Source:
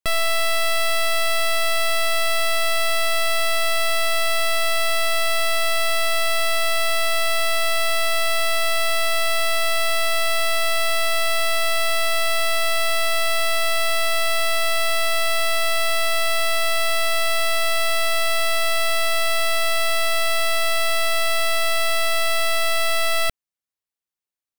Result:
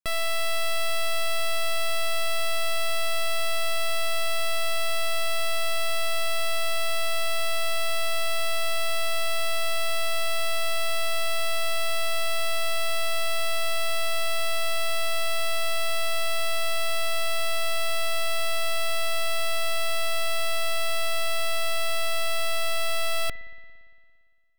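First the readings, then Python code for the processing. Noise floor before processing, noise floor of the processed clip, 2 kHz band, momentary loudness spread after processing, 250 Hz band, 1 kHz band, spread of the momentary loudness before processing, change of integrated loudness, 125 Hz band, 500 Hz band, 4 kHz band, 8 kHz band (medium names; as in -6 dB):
under -85 dBFS, -33 dBFS, -7.5 dB, 0 LU, -6.5 dB, -7.0 dB, 0 LU, -7.0 dB, no reading, -6.0 dB, -6.5 dB, -6.5 dB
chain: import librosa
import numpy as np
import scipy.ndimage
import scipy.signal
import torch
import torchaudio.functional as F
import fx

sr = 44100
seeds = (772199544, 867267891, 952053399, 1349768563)

y = fx.rev_spring(x, sr, rt60_s=2.0, pass_ms=(57,), chirp_ms=55, drr_db=14.5)
y = F.gain(torch.from_numpy(y), -6.5).numpy()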